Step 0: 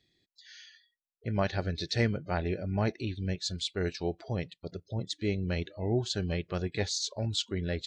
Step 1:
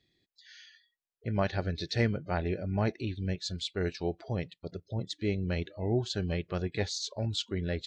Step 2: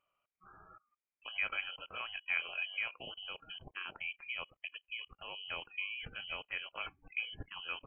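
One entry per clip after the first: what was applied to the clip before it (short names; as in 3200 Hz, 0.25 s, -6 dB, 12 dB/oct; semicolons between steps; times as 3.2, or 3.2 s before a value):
high shelf 6300 Hz -8 dB
level quantiser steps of 21 dB; resonant low shelf 490 Hz -11.5 dB, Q 3; inverted band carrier 3100 Hz; gain +7 dB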